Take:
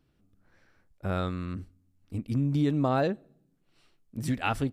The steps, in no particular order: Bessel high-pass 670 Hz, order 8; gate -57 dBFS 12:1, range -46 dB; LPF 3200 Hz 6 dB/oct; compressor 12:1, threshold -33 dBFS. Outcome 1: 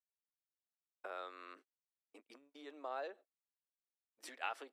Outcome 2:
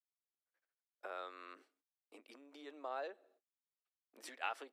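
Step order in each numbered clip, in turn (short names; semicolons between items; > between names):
compressor > Bessel high-pass > gate > LPF; LPF > gate > compressor > Bessel high-pass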